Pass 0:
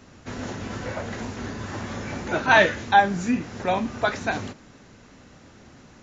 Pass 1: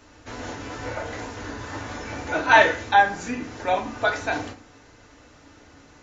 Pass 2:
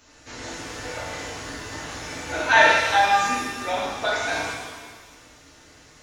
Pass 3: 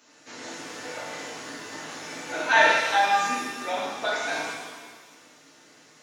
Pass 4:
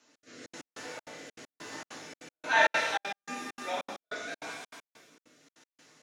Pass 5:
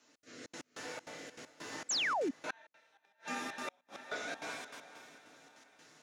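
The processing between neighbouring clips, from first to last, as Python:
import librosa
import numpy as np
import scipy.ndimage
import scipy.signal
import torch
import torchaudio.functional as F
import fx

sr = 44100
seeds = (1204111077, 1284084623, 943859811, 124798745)

y1 = fx.peak_eq(x, sr, hz=170.0, db=-11.0, octaves=1.3)
y1 = fx.rev_fdn(y1, sr, rt60_s=0.4, lf_ratio=1.2, hf_ratio=0.55, size_ms=20.0, drr_db=2.0)
y1 = F.gain(torch.from_numpy(y1), -1.0).numpy()
y2 = fx.high_shelf(y1, sr, hz=2600.0, db=10.5)
y2 = fx.rev_shimmer(y2, sr, seeds[0], rt60_s=1.4, semitones=7, shimmer_db=-8, drr_db=-2.5)
y2 = F.gain(torch.from_numpy(y2), -7.0).numpy()
y3 = scipy.signal.sosfilt(scipy.signal.butter(4, 160.0, 'highpass', fs=sr, output='sos'), y2)
y3 = F.gain(torch.from_numpy(y3), -3.0).numpy()
y4 = fx.step_gate(y3, sr, bpm=197, pattern='xx.xxx.x..x', floor_db=-60.0, edge_ms=4.5)
y4 = fx.rotary(y4, sr, hz=1.0)
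y4 = F.gain(torch.from_numpy(y4), -4.0).numpy()
y5 = fx.echo_diffused(y4, sr, ms=477, feedback_pct=50, wet_db=-15)
y5 = fx.gate_flip(y5, sr, shuts_db=-25.0, range_db=-36)
y5 = fx.spec_paint(y5, sr, seeds[1], shape='fall', start_s=1.89, length_s=0.42, low_hz=240.0, high_hz=8100.0, level_db=-31.0)
y5 = F.gain(torch.from_numpy(y5), -2.0).numpy()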